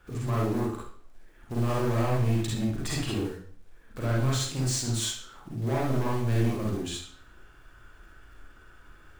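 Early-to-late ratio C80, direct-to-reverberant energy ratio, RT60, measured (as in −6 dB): 6.0 dB, −5.0 dB, 0.55 s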